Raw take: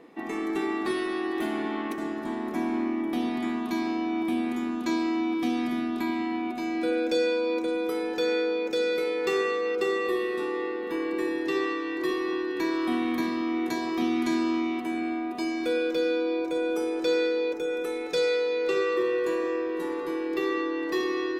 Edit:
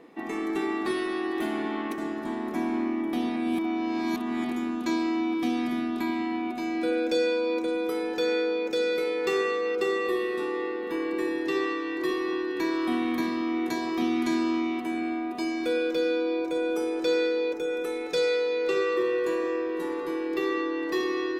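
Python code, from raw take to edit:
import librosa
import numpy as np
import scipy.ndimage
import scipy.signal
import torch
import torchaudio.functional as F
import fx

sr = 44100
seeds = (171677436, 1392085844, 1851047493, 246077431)

y = fx.edit(x, sr, fx.reverse_span(start_s=3.36, length_s=1.15), tone=tone)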